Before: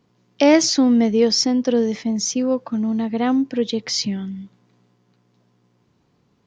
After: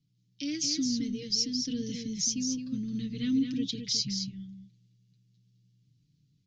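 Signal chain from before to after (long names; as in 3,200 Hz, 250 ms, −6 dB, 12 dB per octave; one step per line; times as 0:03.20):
Chebyshev band-stop filter 140–4,600 Hz, order 2
comb filter 6.8 ms, depth 61%
speech leveller within 5 dB 0.5 s
high-frequency loss of the air 63 metres
on a send: single-tap delay 215 ms −6 dB
on the sum: level −3.5 dB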